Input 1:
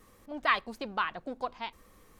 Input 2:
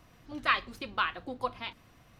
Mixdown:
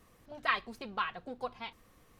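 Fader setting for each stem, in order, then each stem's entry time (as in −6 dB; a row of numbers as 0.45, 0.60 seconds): −5.5, −8.5 decibels; 0.00, 0.00 seconds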